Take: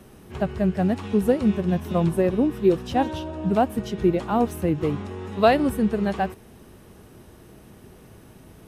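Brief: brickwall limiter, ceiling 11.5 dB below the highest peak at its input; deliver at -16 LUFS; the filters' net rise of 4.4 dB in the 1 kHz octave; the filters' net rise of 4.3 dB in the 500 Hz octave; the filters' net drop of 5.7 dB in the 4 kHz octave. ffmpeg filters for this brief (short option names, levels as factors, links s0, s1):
-af "equalizer=f=500:t=o:g=4.5,equalizer=f=1000:t=o:g=4.5,equalizer=f=4000:t=o:g=-8.5,volume=2.37,alimiter=limit=0.562:level=0:latency=1"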